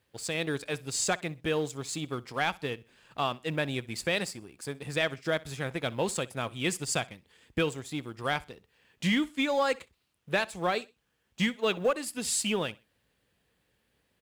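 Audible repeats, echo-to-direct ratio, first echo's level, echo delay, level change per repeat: 2, −21.5 dB, −22.0 dB, 63 ms, −10.0 dB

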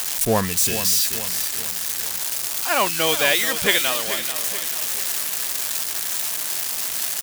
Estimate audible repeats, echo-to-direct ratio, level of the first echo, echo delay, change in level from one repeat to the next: 4, −10.0 dB, −11.0 dB, 434 ms, −6.5 dB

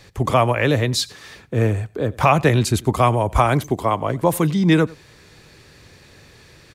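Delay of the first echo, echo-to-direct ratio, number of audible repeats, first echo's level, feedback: 93 ms, −23.0 dB, 1, −23.0 dB, repeats not evenly spaced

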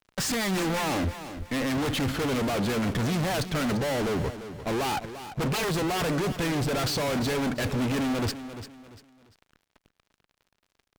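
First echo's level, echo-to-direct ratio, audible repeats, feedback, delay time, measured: −12.0 dB, −11.5 dB, 3, 32%, 345 ms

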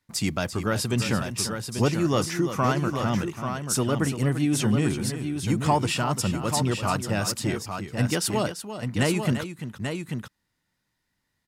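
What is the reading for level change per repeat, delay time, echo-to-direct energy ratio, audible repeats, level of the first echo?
repeats not evenly spaced, 341 ms, −5.5 dB, 2, −10.5 dB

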